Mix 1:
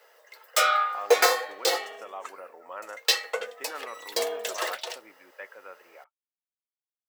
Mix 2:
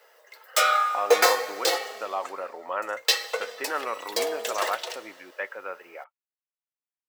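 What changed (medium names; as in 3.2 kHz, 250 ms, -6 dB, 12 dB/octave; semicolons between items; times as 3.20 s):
speech +9.5 dB; reverb: on, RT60 2.3 s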